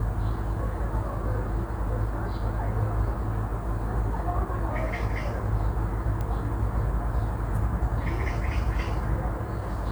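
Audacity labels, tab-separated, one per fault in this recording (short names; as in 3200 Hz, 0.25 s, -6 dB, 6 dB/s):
6.210000	6.210000	pop -20 dBFS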